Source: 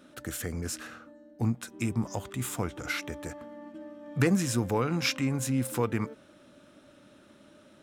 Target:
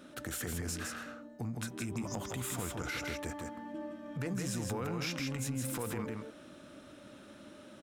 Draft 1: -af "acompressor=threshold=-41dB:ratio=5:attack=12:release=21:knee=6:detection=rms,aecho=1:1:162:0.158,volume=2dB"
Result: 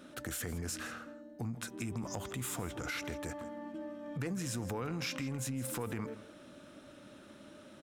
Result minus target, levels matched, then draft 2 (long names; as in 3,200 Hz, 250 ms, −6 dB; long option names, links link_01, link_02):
echo-to-direct −12 dB
-af "acompressor=threshold=-41dB:ratio=5:attack=12:release=21:knee=6:detection=rms,aecho=1:1:162:0.631,volume=2dB"